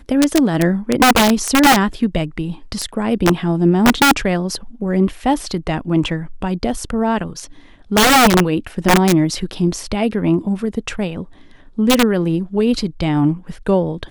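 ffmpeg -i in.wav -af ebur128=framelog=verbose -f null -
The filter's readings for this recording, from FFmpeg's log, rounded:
Integrated loudness:
  I:         -16.5 LUFS
  Threshold: -26.7 LUFS
Loudness range:
  LRA:         4.1 LU
  Threshold: -37.0 LUFS
  LRA low:   -19.4 LUFS
  LRA high:  -15.3 LUFS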